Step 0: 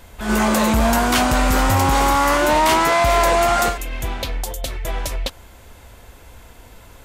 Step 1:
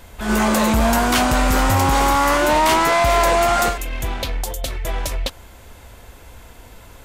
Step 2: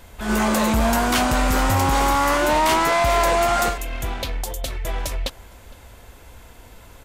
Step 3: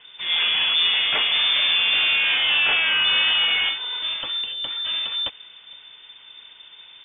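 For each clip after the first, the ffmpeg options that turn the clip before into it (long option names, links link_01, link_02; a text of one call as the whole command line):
ffmpeg -i in.wav -af "aeval=exprs='0.316*(cos(1*acos(clip(val(0)/0.316,-1,1)))-cos(1*PI/2))+0.01*(cos(5*acos(clip(val(0)/0.316,-1,1)))-cos(5*PI/2))+0.00631*(cos(6*acos(clip(val(0)/0.316,-1,1)))-cos(6*PI/2))':channel_layout=same" out.wav
ffmpeg -i in.wav -filter_complex "[0:a]asplit=2[link_01][link_02];[link_02]adelay=460.6,volume=-23dB,highshelf=frequency=4000:gain=-10.4[link_03];[link_01][link_03]amix=inputs=2:normalize=0,volume=-2.5dB" out.wav
ffmpeg -i in.wav -af "lowpass=frequency=3100:width_type=q:width=0.5098,lowpass=frequency=3100:width_type=q:width=0.6013,lowpass=frequency=3100:width_type=q:width=0.9,lowpass=frequency=3100:width_type=q:width=2.563,afreqshift=-3600,volume=-1.5dB" out.wav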